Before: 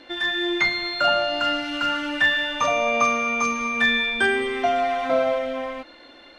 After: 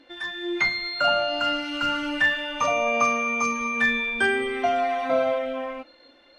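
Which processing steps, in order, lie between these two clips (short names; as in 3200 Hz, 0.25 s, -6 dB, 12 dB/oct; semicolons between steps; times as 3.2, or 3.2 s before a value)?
1.82–2.22 tone controls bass +5 dB, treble +1 dB; spectral noise reduction 8 dB; gain -1.5 dB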